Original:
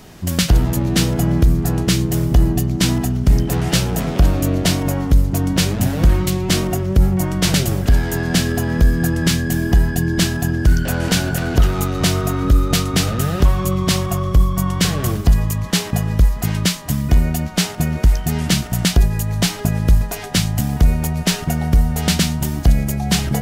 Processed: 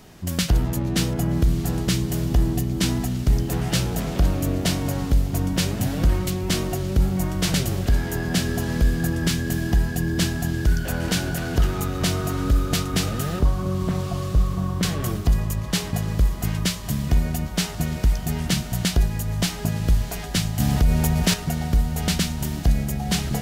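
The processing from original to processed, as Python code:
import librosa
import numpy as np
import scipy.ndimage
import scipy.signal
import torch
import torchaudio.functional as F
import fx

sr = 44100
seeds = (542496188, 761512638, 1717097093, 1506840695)

y = fx.lowpass(x, sr, hz=1100.0, slope=12, at=(13.39, 14.83))
y = fx.echo_diffused(y, sr, ms=1257, feedback_pct=45, wet_db=-12.5)
y = fx.env_flatten(y, sr, amount_pct=50, at=(20.6, 21.34))
y = y * 10.0 ** (-6.0 / 20.0)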